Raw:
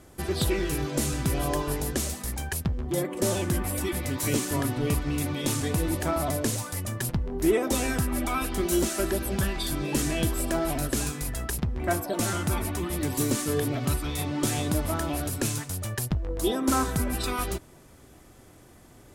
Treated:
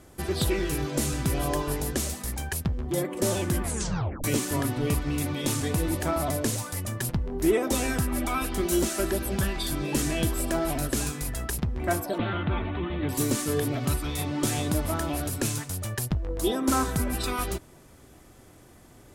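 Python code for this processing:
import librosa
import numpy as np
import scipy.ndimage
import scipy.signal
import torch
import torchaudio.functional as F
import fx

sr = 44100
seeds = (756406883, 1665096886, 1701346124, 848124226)

y = fx.steep_lowpass(x, sr, hz=3700.0, slope=72, at=(12.18, 13.09))
y = fx.edit(y, sr, fx.tape_stop(start_s=3.62, length_s=0.62), tone=tone)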